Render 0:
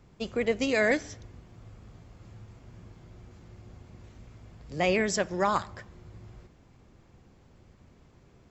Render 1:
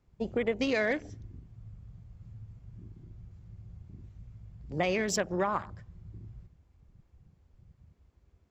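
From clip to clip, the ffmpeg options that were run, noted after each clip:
-af "afwtdn=0.01,acompressor=threshold=0.0447:ratio=6,volume=1.26"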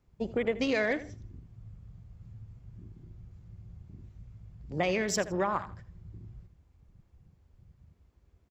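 -af "aecho=1:1:81|162:0.158|0.0396"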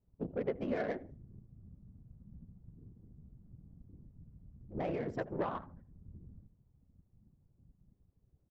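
-af "afftfilt=real='hypot(re,im)*cos(2*PI*random(0))':imag='hypot(re,im)*sin(2*PI*random(1))':win_size=512:overlap=0.75,adynamicsmooth=sensitivity=1.5:basefreq=800"

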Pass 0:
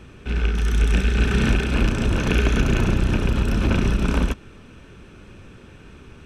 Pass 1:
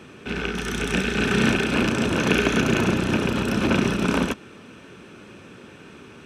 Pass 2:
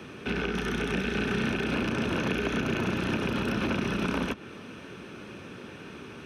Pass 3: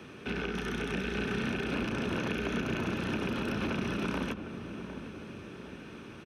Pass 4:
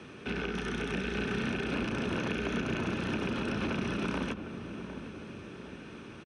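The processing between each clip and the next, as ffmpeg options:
-af "highpass=180,volume=1.5"
-filter_complex "[0:a]asplit=2[s0][s1];[s1]alimiter=limit=0.141:level=0:latency=1:release=100,volume=1[s2];[s0][s2]amix=inputs=2:normalize=0,equalizer=f=7600:t=o:w=0.24:g=-10.5,acrossover=split=110|1000|3800[s3][s4][s5][s6];[s3]acompressor=threshold=0.0178:ratio=4[s7];[s4]acompressor=threshold=0.0708:ratio=4[s8];[s5]acompressor=threshold=0.0355:ratio=4[s9];[s6]acompressor=threshold=0.00631:ratio=4[s10];[s7][s8][s9][s10]amix=inputs=4:normalize=0,volume=0.562"
-filter_complex "[0:a]asplit=2[s0][s1];[s1]adelay=756,lowpass=f=920:p=1,volume=0.355,asplit=2[s2][s3];[s3]adelay=756,lowpass=f=920:p=1,volume=0.54,asplit=2[s4][s5];[s5]adelay=756,lowpass=f=920:p=1,volume=0.54,asplit=2[s6][s7];[s7]adelay=756,lowpass=f=920:p=1,volume=0.54,asplit=2[s8][s9];[s9]adelay=756,lowpass=f=920:p=1,volume=0.54,asplit=2[s10][s11];[s11]adelay=756,lowpass=f=920:p=1,volume=0.54[s12];[s0][s2][s4][s6][s8][s10][s12]amix=inputs=7:normalize=0,volume=0.596"
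-af "aresample=22050,aresample=44100"

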